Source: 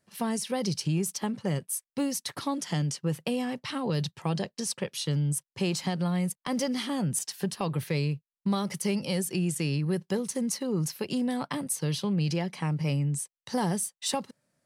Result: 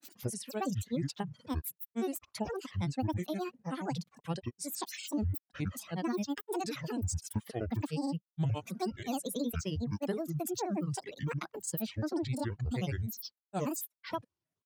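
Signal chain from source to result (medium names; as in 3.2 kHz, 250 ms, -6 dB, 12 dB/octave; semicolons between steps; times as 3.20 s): dynamic bell 4.6 kHz, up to -5 dB, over -46 dBFS, Q 0.81; granulator, grains 19 per s, pitch spread up and down by 12 st; reverb removal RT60 1.2 s; trim -3.5 dB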